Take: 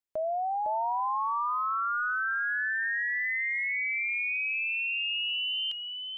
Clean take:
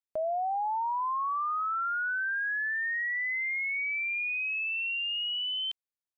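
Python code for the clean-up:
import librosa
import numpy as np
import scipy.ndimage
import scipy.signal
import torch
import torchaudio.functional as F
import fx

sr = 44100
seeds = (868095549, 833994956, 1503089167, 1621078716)

y = fx.fix_echo_inverse(x, sr, delay_ms=507, level_db=-5.5)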